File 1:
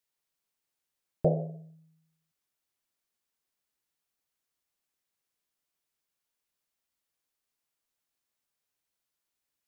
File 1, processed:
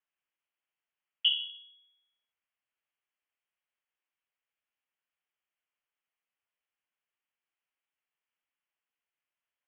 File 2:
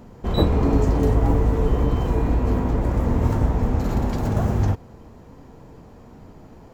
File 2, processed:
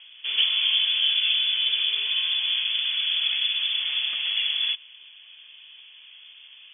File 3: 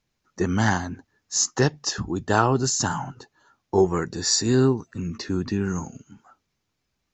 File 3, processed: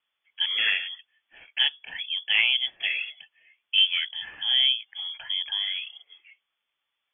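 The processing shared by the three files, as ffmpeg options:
-filter_complex "[0:a]asplit=2[a][b];[b]highpass=f=720:p=1,volume=12dB,asoftclip=type=tanh:threshold=-3.5dB[c];[a][c]amix=inputs=2:normalize=0,lowpass=f=1.2k:p=1,volume=-6dB,lowpass=f=3k:t=q:w=0.5098,lowpass=f=3k:t=q:w=0.6013,lowpass=f=3k:t=q:w=0.9,lowpass=f=3k:t=q:w=2.563,afreqshift=-3500,volume=-3dB"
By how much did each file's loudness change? +2.0, 0.0, -0.5 LU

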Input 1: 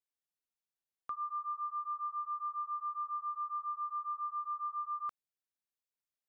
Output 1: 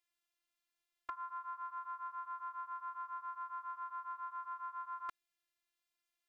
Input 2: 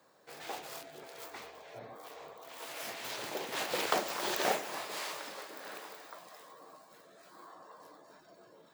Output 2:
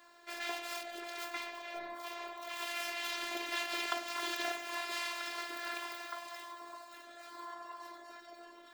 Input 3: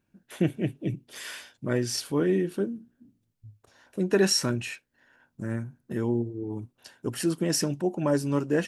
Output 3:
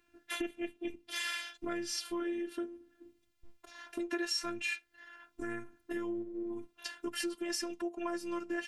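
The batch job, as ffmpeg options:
-af "afftfilt=real='hypot(re,im)*cos(PI*b)':imag='0':win_size=512:overlap=0.75,acompressor=threshold=-43dB:ratio=4,equalizer=f=2.3k:t=o:w=2.5:g=9.5,volume=4.5dB"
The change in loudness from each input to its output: -6.0, -1.5, -10.0 LU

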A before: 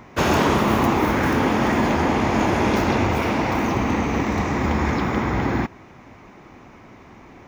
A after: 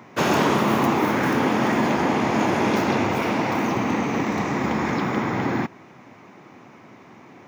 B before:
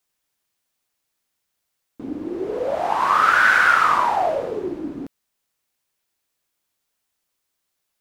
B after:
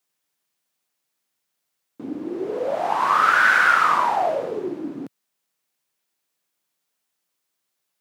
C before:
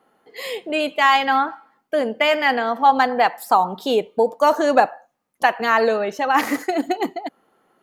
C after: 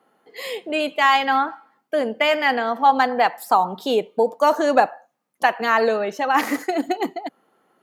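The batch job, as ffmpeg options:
-af "highpass=f=120:w=0.5412,highpass=f=120:w=1.3066,volume=-1dB"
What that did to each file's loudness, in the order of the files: -1.5, -1.0, -1.0 LU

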